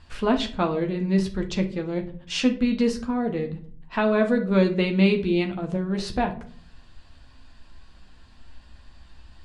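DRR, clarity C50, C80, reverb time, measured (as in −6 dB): 3.5 dB, 13.0 dB, 18.5 dB, 0.50 s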